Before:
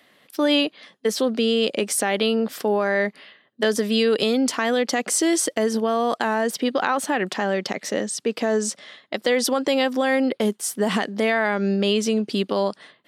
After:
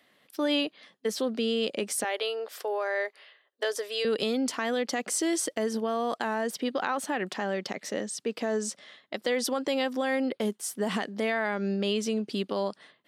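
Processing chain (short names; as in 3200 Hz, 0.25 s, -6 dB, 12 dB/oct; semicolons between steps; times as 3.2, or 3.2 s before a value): 2.04–4.05 inverse Chebyshev high-pass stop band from 200 Hz, stop band 40 dB; gain -7.5 dB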